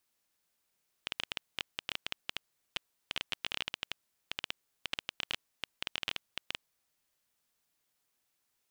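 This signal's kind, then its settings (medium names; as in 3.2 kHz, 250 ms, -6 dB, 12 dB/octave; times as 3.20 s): random clicks 11 per s -15.5 dBFS 5.67 s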